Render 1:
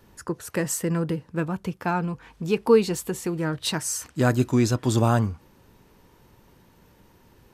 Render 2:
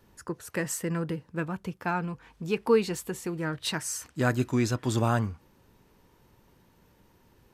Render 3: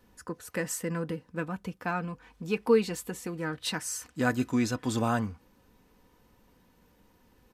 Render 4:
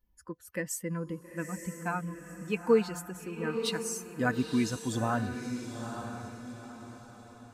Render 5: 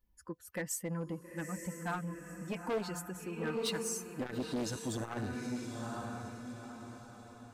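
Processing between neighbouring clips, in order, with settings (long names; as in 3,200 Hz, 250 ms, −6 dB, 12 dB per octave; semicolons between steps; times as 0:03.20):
dynamic equaliser 1,900 Hz, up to +5 dB, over −41 dBFS, Q 1; level −5.5 dB
comb filter 4 ms, depth 42%; level −2 dB
spectral dynamics exaggerated over time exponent 1.5; feedback delay with all-pass diffusion 910 ms, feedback 40%, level −7.5 dB
hard clipping −27 dBFS, distortion −8 dB; saturating transformer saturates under 240 Hz; level −1.5 dB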